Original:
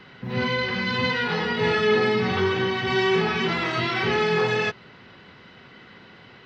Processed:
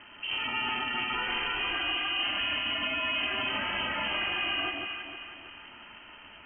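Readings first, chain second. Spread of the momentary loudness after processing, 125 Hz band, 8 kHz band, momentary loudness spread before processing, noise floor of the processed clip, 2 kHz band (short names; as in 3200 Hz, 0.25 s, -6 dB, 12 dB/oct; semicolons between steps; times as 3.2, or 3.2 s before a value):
18 LU, -21.0 dB, n/a, 5 LU, -50 dBFS, -5.0 dB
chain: limiter -22 dBFS, peak gain reduction 11 dB; ring modulator 190 Hz; inverted band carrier 3100 Hz; echo with dull and thin repeats by turns 0.157 s, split 1000 Hz, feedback 66%, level -2 dB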